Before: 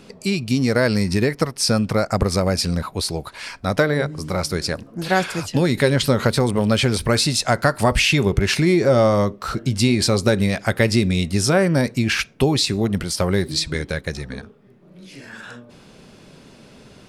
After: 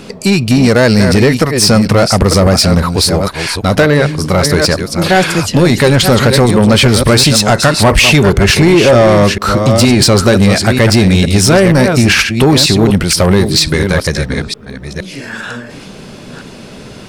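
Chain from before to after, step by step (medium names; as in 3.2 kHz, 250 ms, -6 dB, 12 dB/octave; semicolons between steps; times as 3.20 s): chunks repeated in reverse 469 ms, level -9 dB; in parallel at -1 dB: peak limiter -11 dBFS, peak gain reduction 8.5 dB; on the sum: saturation -10.5 dBFS, distortion -13 dB; trim +8.5 dB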